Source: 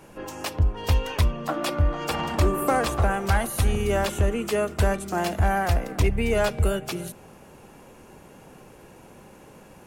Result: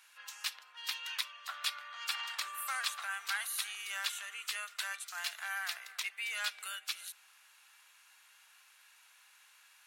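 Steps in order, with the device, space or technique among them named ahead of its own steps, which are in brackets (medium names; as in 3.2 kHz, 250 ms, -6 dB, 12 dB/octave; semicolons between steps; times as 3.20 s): headphones lying on a table (high-pass 1.4 kHz 24 dB/octave; peaking EQ 3.9 kHz +7 dB 0.5 oct); trim -5.5 dB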